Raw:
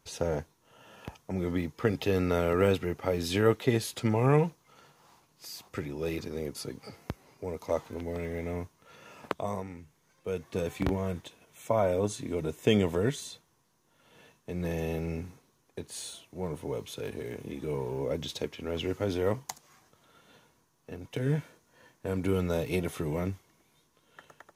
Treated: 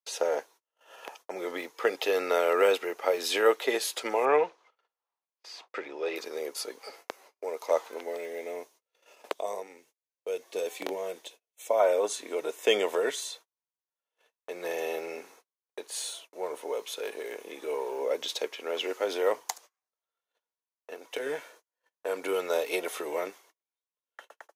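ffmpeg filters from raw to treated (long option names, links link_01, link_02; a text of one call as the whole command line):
ffmpeg -i in.wav -filter_complex "[0:a]asettb=1/sr,asplit=3[link_01][link_02][link_03];[link_01]atrim=end=4.254[link_04];[link_02]atrim=start=4.25:end=6.16,asetpts=PTS-STARTPTS,afade=type=in:duration=0.004:curve=qsin,afade=type=out:start_time=1.906:duration=0.004:curve=qsin,lowpass=3700[link_05];[link_03]atrim=start=6.156[link_06];[link_04][link_05]acrossfade=duration=0.004:curve1=hsin:curve2=qsin[link_07];[link_07][link_06]acrossfade=duration=0.004:curve1=qsin:curve2=hsin,asettb=1/sr,asplit=3[link_08][link_09][link_10];[link_08]atrim=end=8.154[link_11];[link_09]atrim=start=8.15:end=11.8,asetpts=PTS-STARTPTS,afade=type=in:duration=0.004:curve=qsin,afade=type=out:start_time=3.646:duration=0.004:curve=qsin,equalizer=frequency=1300:width_type=o:width=1.4:gain=-9.5[link_12];[link_10]atrim=start=11.796[link_13];[link_11][link_12]acrossfade=duration=0.004:curve1=hsin:curve2=qsin[link_14];[link_14][link_13]acrossfade=duration=0.004:curve1=qsin:curve2=hsin,agate=range=-36dB:threshold=-53dB:ratio=16:detection=peak,highpass=frequency=440:width=0.5412,highpass=frequency=440:width=1.3066,volume=5dB" out.wav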